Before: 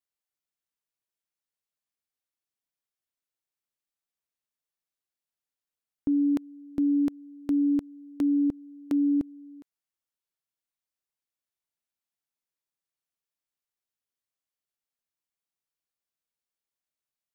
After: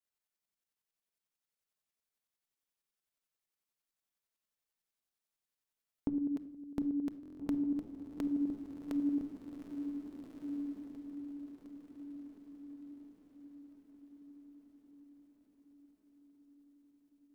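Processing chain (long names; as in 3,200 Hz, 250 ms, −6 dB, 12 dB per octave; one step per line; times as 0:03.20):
downward compressor 4 to 1, threshold −33 dBFS, peak gain reduction 9 dB
shaped tremolo saw up 11 Hz, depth 60%
feedback delay with all-pass diffusion 1,581 ms, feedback 45%, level −5.5 dB
on a send at −11 dB: convolution reverb RT60 0.80 s, pre-delay 5 ms
on the sum: buffer that repeats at 0:07.21, samples 1,024, times 7
level +1.5 dB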